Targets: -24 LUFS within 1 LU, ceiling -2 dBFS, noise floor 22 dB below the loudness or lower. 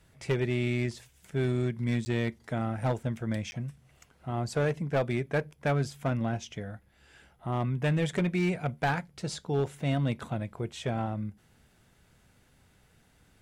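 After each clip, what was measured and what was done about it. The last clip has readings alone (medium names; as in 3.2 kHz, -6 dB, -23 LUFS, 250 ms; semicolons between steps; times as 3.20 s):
clipped samples 1.3%; clipping level -21.5 dBFS; dropouts 2; longest dropout 10 ms; loudness -31.5 LUFS; peak level -21.5 dBFS; loudness target -24.0 LUFS
-> clip repair -21.5 dBFS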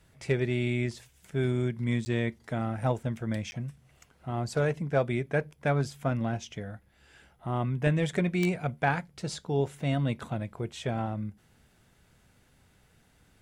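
clipped samples 0.0%; dropouts 2; longest dropout 10 ms
-> interpolate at 2.05/3.51 s, 10 ms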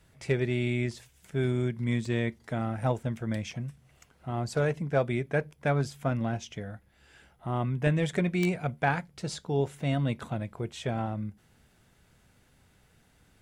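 dropouts 0; loudness -30.5 LUFS; peak level -12.5 dBFS; loudness target -24.0 LUFS
-> trim +6.5 dB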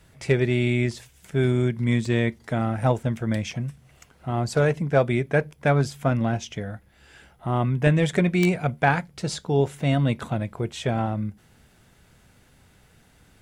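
loudness -24.0 LUFS; peak level -6.0 dBFS; noise floor -58 dBFS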